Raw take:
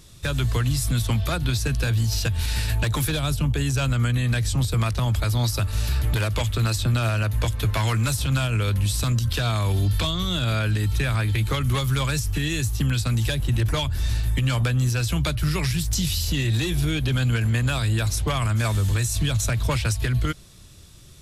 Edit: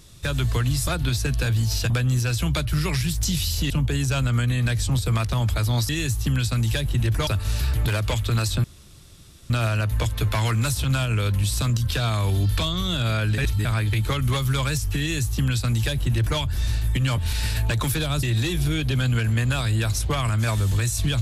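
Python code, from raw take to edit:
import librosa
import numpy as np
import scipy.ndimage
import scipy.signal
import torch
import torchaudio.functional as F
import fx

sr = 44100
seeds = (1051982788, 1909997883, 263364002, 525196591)

y = fx.edit(x, sr, fx.cut(start_s=0.87, length_s=0.41),
    fx.swap(start_s=2.31, length_s=1.05, other_s=14.6, other_length_s=1.8),
    fx.insert_room_tone(at_s=6.92, length_s=0.86),
    fx.reverse_span(start_s=10.8, length_s=0.27),
    fx.duplicate(start_s=12.43, length_s=1.38, to_s=5.55), tone=tone)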